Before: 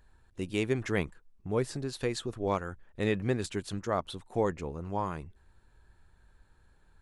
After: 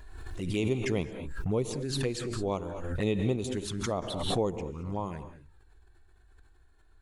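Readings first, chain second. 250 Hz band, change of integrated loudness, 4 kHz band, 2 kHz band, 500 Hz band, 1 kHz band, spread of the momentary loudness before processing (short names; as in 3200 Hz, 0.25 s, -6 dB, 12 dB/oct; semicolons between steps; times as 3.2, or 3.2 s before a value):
+2.0 dB, +1.0 dB, +4.5 dB, -2.5 dB, +0.5 dB, -2.5 dB, 10 LU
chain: envelope flanger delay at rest 3 ms, full sweep at -28 dBFS; non-linear reverb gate 0.24 s rising, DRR 10.5 dB; backwards sustainer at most 34 dB/s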